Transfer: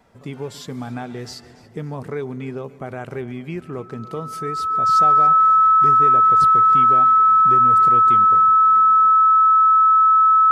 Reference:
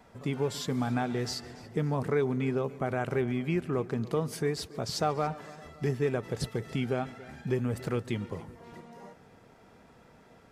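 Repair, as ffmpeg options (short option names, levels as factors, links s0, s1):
-af "bandreject=f=1300:w=30"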